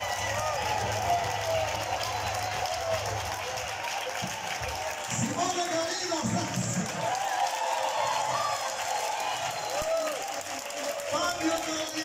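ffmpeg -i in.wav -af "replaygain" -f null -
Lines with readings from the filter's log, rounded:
track_gain = +12.0 dB
track_peak = 0.136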